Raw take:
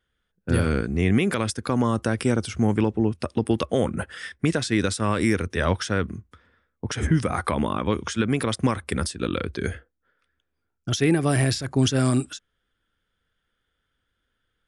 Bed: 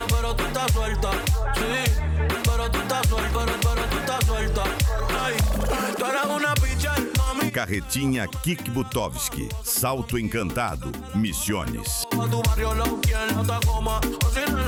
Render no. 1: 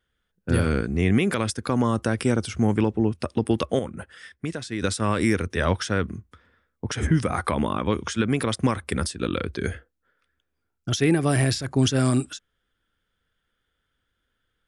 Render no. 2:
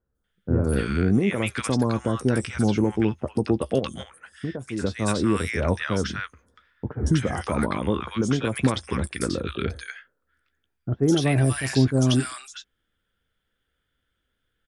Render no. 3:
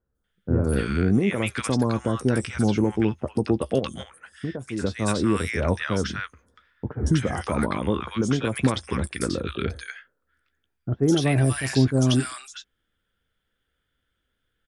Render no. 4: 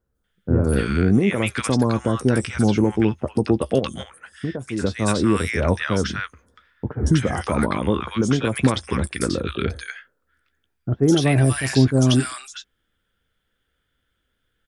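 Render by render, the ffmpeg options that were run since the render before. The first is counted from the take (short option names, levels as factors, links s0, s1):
-filter_complex "[0:a]asplit=3[s0][s1][s2];[s0]atrim=end=3.792[s3];[s1]atrim=start=3.788:end=4.822,asetpts=PTS-STARTPTS,volume=0.398[s4];[s2]atrim=start=4.818[s5];[s3][s4]acrossfade=d=0.004:c1=hsin:c2=hsin[s6];[s6][s5]acrossfade=d=0.004:c1=hsin:c2=hsin"
-filter_complex "[0:a]asplit=2[s0][s1];[s1]adelay=15,volume=0.211[s2];[s0][s2]amix=inputs=2:normalize=0,acrossover=split=1100|5800[s3][s4][s5];[s5]adelay=150[s6];[s4]adelay=240[s7];[s3][s7][s6]amix=inputs=3:normalize=0"
-af anull
-af "volume=1.5"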